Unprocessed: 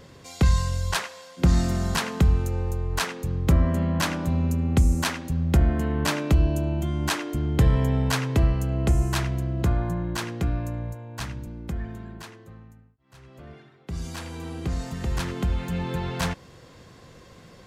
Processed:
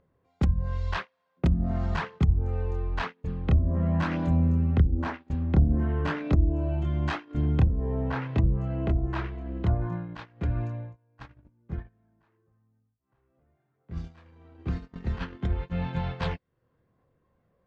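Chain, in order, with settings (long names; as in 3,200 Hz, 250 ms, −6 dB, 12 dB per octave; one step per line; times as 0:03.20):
treble cut that deepens with the level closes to 320 Hz, closed at −14.5 dBFS
multi-voice chorus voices 2, 0.47 Hz, delay 26 ms, depth 1.9 ms
low-pass that shuts in the quiet parts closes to 1,300 Hz, open at −20 dBFS
upward compression, threshold −27 dBFS
noise gate −30 dBFS, range −31 dB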